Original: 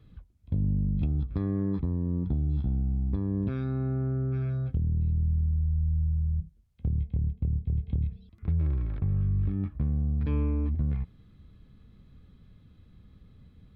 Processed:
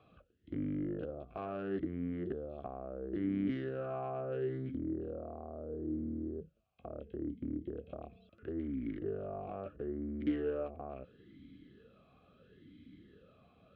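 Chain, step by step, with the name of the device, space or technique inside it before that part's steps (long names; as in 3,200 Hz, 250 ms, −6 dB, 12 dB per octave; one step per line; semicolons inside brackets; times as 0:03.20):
talk box (tube saturation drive 35 dB, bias 0.25; formant filter swept between two vowels a-i 0.74 Hz)
level +17 dB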